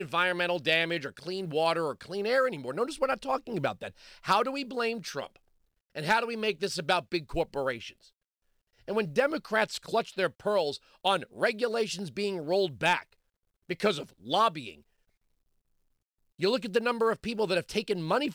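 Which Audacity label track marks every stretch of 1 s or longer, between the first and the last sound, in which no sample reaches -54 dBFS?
14.800000	16.390000	silence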